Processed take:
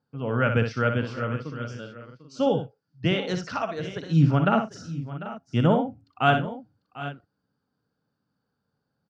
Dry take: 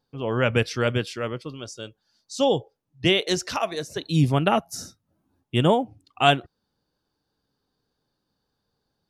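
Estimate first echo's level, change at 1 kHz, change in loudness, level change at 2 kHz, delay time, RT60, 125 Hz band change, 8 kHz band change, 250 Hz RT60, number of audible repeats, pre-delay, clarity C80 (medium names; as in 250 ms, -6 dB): -7.0 dB, -1.5 dB, -2.0 dB, -1.5 dB, 61 ms, no reverb, +2.0 dB, under -10 dB, no reverb, 4, no reverb, no reverb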